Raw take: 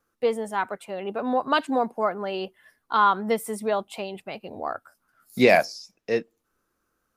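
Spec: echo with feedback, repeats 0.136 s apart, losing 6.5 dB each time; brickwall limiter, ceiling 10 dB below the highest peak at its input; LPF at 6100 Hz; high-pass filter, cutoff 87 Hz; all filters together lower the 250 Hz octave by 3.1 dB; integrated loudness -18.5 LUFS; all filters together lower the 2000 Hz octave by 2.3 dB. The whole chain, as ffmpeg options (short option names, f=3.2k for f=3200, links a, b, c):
-af "highpass=87,lowpass=6.1k,equalizer=f=250:t=o:g=-3.5,equalizer=f=2k:t=o:g=-3,alimiter=limit=-15.5dB:level=0:latency=1,aecho=1:1:136|272|408|544|680|816:0.473|0.222|0.105|0.0491|0.0231|0.0109,volume=10dB"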